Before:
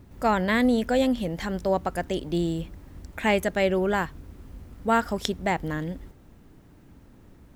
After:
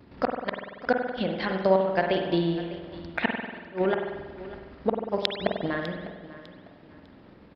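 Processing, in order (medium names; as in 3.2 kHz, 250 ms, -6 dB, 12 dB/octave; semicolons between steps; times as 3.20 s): vibrato 0.42 Hz 11 cents; in parallel at -2 dB: compression 6:1, threshold -33 dBFS, peak gain reduction 15 dB; on the sum: resampled via 11.025 kHz; inverted gate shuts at -12 dBFS, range -35 dB; transient shaper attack +6 dB, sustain -4 dB; high-pass 300 Hz 6 dB/octave; on a send: feedback delay 601 ms, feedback 28%, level -16 dB; on the sum: spring tank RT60 1.3 s, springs 47 ms, chirp 55 ms, DRR 2.5 dB; trim -1.5 dB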